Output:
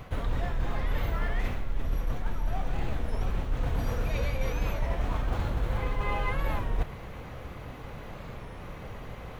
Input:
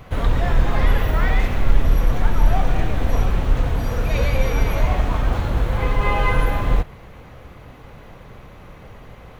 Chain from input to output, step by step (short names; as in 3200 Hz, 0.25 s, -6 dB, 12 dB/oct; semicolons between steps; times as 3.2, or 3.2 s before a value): reverse; compressor 12:1, threshold -24 dBFS, peak gain reduction 18 dB; reverse; record warp 33 1/3 rpm, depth 160 cents